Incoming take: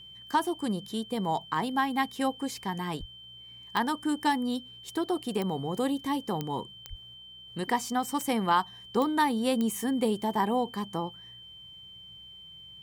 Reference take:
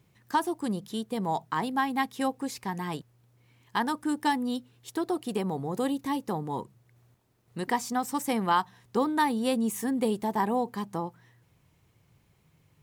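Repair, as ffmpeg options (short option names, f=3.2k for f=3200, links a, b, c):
-filter_complex "[0:a]adeclick=t=4,bandreject=f=62.1:t=h:w=4,bandreject=f=124.2:t=h:w=4,bandreject=f=186.3:t=h:w=4,bandreject=f=3.1k:w=30,asplit=3[a][b][c];[a]afade=t=out:st=2.99:d=0.02[d];[b]highpass=f=140:w=0.5412,highpass=f=140:w=1.3066,afade=t=in:st=2.99:d=0.02,afade=t=out:st=3.11:d=0.02[e];[c]afade=t=in:st=3.11:d=0.02[f];[d][e][f]amix=inputs=3:normalize=0,asplit=3[g][h][i];[g]afade=t=out:st=6.89:d=0.02[j];[h]highpass=f=140:w=0.5412,highpass=f=140:w=1.3066,afade=t=in:st=6.89:d=0.02,afade=t=out:st=7.01:d=0.02[k];[i]afade=t=in:st=7.01:d=0.02[l];[j][k][l]amix=inputs=3:normalize=0"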